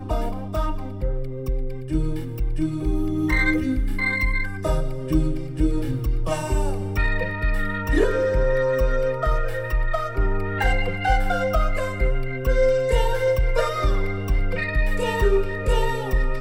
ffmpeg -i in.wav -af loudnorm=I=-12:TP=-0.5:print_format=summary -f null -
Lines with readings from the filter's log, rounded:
Input Integrated:    -24.0 LUFS
Input True Peak:      -6.7 dBTP
Input LRA:             1.8 LU
Input Threshold:     -34.0 LUFS